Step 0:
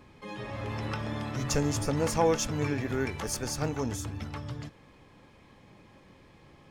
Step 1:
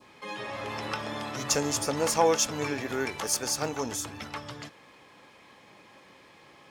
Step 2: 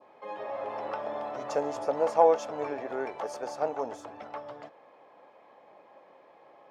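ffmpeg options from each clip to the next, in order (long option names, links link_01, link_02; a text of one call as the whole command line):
ffmpeg -i in.wav -af "highpass=frequency=730:poles=1,adynamicequalizer=threshold=0.00355:dfrequency=1900:dqfactor=1.1:tfrequency=1900:tqfactor=1.1:attack=5:release=100:ratio=0.375:range=2:mode=cutabove:tftype=bell,volume=7dB" out.wav
ffmpeg -i in.wav -af "bandpass=frequency=650:width_type=q:width=2.5:csg=0,volume=6.5dB" out.wav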